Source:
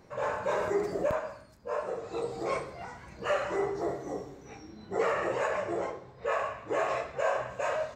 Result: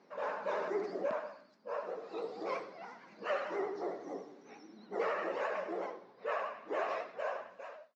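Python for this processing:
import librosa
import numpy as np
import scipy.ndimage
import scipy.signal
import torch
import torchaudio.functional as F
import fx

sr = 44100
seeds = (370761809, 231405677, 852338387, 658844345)

y = fx.fade_out_tail(x, sr, length_s=0.97)
y = fx.vibrato(y, sr, rate_hz=11.0, depth_cents=83.0)
y = scipy.signal.sosfilt(scipy.signal.ellip(3, 1.0, 40, [210.0, 5300.0], 'bandpass', fs=sr, output='sos'), y)
y = F.gain(torch.from_numpy(y), -5.5).numpy()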